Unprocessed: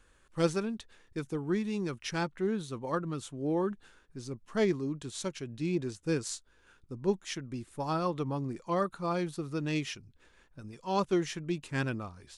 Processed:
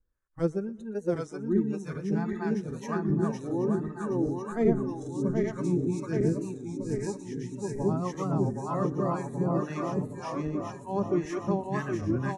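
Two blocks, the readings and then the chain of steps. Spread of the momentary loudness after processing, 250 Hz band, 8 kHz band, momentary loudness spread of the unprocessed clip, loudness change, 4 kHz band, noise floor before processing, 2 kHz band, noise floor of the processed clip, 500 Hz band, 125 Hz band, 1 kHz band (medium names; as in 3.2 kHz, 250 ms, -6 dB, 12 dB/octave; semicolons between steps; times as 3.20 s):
6 LU, +5.0 dB, -4.5 dB, 13 LU, +3.5 dB, under -10 dB, -65 dBFS, -2.0 dB, -45 dBFS, +3.5 dB, +6.0 dB, +1.5 dB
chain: backward echo that repeats 388 ms, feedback 81%, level -0.5 dB; spectral noise reduction 20 dB; high-order bell 3.3 kHz -9 dB 1.1 oct; harmonic tremolo 1.9 Hz, depth 70%, crossover 720 Hz; tilt EQ -2 dB/octave; feedback delay 121 ms, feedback 48%, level -21.5 dB; warped record 33 1/3 rpm, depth 100 cents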